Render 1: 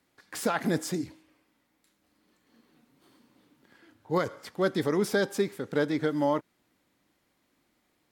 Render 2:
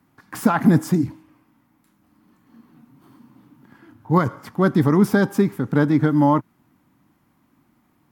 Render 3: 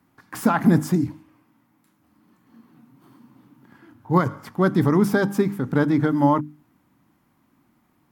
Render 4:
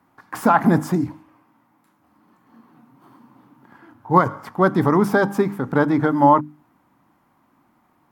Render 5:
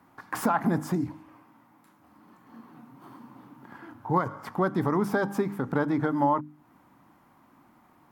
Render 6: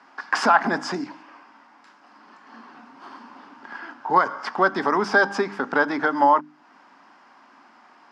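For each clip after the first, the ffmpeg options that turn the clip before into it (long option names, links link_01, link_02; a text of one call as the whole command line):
ffmpeg -i in.wav -af "equalizer=frequency=125:width_type=o:width=1:gain=9,equalizer=frequency=250:width_type=o:width=1:gain=6,equalizer=frequency=500:width_type=o:width=1:gain=-9,equalizer=frequency=1000:width_type=o:width=1:gain=6,equalizer=frequency=2000:width_type=o:width=1:gain=-4,equalizer=frequency=4000:width_type=o:width=1:gain=-9,equalizer=frequency=8000:width_type=o:width=1:gain=-7,volume=8.5dB" out.wav
ffmpeg -i in.wav -af "bandreject=frequency=50:width_type=h:width=6,bandreject=frequency=100:width_type=h:width=6,bandreject=frequency=150:width_type=h:width=6,bandreject=frequency=200:width_type=h:width=6,bandreject=frequency=250:width_type=h:width=6,bandreject=frequency=300:width_type=h:width=6,volume=-1dB" out.wav
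ffmpeg -i in.wav -af "equalizer=frequency=870:width=0.64:gain=10,volume=-2dB" out.wav
ffmpeg -i in.wav -af "acompressor=threshold=-33dB:ratio=2,volume=2dB" out.wav
ffmpeg -i in.wav -af "highpass=frequency=280:width=0.5412,highpass=frequency=280:width=1.3066,equalizer=frequency=320:width_type=q:width=4:gain=-9,equalizer=frequency=490:width_type=q:width=4:gain=-5,equalizer=frequency=1600:width_type=q:width=4:gain=6,equalizer=frequency=2800:width_type=q:width=4:gain=5,equalizer=frequency=5000:width_type=q:width=4:gain=10,lowpass=frequency=6600:width=0.5412,lowpass=frequency=6600:width=1.3066,volume=8.5dB" out.wav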